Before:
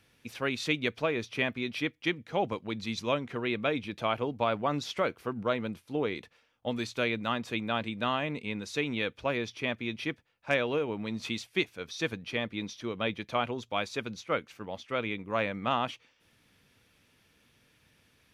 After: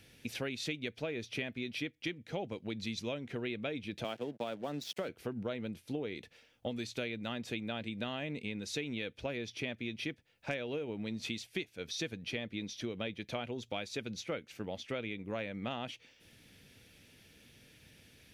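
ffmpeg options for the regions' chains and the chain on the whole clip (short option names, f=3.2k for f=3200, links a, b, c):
-filter_complex "[0:a]asettb=1/sr,asplit=3[a][b][c];[a]atrim=end=4.044[d];[b]atrim=start=4.04:end=5.09,asetpts=PTS-STARTPTS,afade=t=in:d=0.004:c=qsin,afade=t=out:st=1.046:d=0.004:c=qsin,equalizer=f=2.2k:t=o:w=0.2:g=-7,aeval=exprs='sgn(val(0))*max(abs(val(0))-0.00501,0)':c=same,highpass=f=140:w=0.5412,highpass=f=140:w=1.3066[e];[c]atrim=start=5.086[f];[d][e]acrossfade=d=0.004:c1=hsin:c2=qsin[g];[g][f]acrossfade=d=0.004:c1=qsin:c2=hsin,equalizer=f=1.1k:w=1.8:g=-12,acompressor=threshold=-43dB:ratio=5,volume=6.5dB"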